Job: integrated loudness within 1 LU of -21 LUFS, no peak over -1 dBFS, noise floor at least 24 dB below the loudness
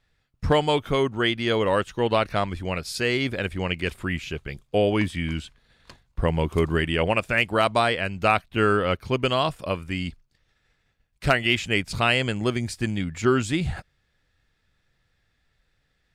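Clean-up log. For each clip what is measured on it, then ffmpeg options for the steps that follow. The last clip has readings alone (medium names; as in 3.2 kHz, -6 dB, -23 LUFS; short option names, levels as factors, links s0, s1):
loudness -24.0 LUFS; peak level -7.5 dBFS; loudness target -21.0 LUFS
-> -af "volume=1.41"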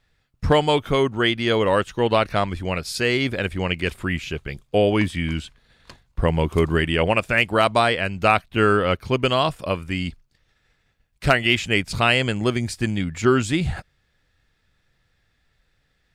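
loudness -21.5 LUFS; peak level -4.5 dBFS; noise floor -68 dBFS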